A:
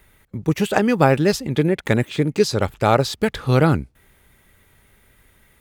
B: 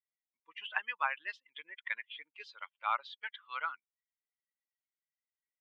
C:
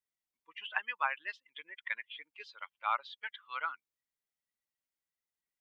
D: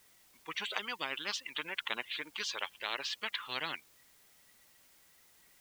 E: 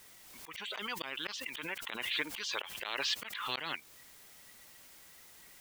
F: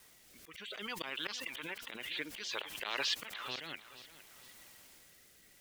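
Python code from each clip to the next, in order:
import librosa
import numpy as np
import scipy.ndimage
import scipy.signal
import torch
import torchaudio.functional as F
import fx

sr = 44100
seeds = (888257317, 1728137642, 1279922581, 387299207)

y1 = fx.bin_expand(x, sr, power=2.0)
y1 = scipy.signal.sosfilt(scipy.signal.cheby1(3, 1.0, [1000.0, 3200.0], 'bandpass', fs=sr, output='sos'), y1)
y1 = y1 * 10.0 ** (-5.5 / 20.0)
y2 = fx.low_shelf(y1, sr, hz=380.0, db=4.0)
y3 = fx.spectral_comp(y2, sr, ratio=10.0)
y4 = fx.auto_swell(y3, sr, attack_ms=365.0)
y4 = fx.pre_swell(y4, sr, db_per_s=35.0)
y4 = y4 * 10.0 ** (7.5 / 20.0)
y5 = fx.rotary(y4, sr, hz=0.6)
y5 = fx.echo_feedback(y5, sr, ms=461, feedback_pct=37, wet_db=-15)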